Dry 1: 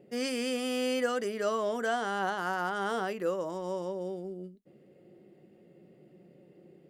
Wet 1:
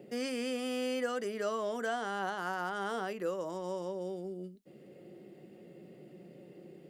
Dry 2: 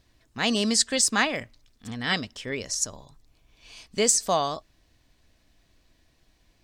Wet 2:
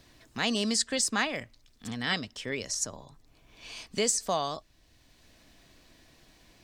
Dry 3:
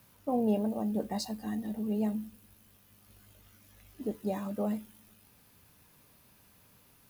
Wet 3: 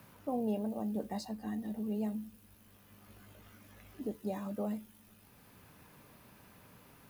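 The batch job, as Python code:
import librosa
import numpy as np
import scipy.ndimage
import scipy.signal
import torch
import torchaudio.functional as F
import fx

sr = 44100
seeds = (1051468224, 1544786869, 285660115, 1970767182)

y = fx.band_squash(x, sr, depth_pct=40)
y = y * librosa.db_to_amplitude(-4.0)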